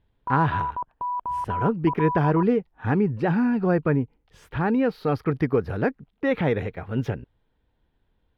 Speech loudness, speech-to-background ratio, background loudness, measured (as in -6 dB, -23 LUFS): -24.5 LUFS, 5.5 dB, -30.0 LUFS